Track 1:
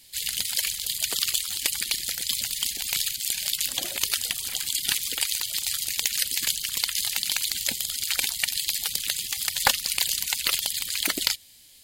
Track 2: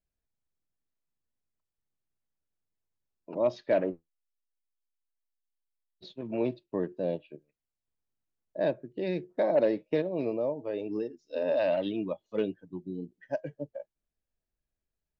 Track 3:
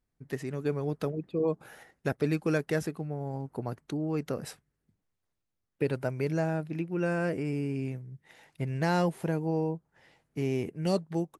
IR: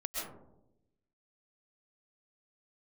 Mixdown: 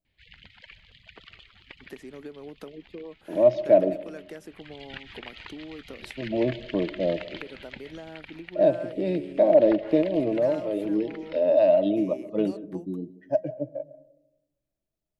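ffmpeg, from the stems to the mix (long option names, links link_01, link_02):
-filter_complex "[0:a]lowpass=frequency=2500:width=0.5412,lowpass=frequency=2500:width=1.3066,adelay=50,volume=-1.5dB,afade=type=in:start_time=4.47:duration=0.5:silence=0.266073,afade=type=out:start_time=7.97:duration=0.29:silence=0.398107,asplit=2[link_01][link_02];[link_02]volume=-15dB[link_03];[1:a]equalizer=frequency=125:width_type=o:width=0.33:gain=10,equalizer=frequency=200:width_type=o:width=0.33:gain=7,equalizer=frequency=315:width_type=o:width=0.33:gain=11,equalizer=frequency=630:width_type=o:width=0.33:gain=12,equalizer=frequency=1600:width_type=o:width=0.33:gain=-6,volume=-2dB,asplit=2[link_04][link_05];[link_05]volume=-18dB[link_06];[2:a]highpass=frequency=230:width=0.5412,highpass=frequency=230:width=1.3066,adelay=1600,volume=-2.5dB[link_07];[link_01][link_07]amix=inputs=2:normalize=0,lowshelf=frequency=220:gain=7.5,acompressor=threshold=-38dB:ratio=6,volume=0dB[link_08];[3:a]atrim=start_sample=2205[link_09];[link_03][link_06]amix=inputs=2:normalize=0[link_10];[link_10][link_09]afir=irnorm=-1:irlink=0[link_11];[link_04][link_08][link_11]amix=inputs=3:normalize=0"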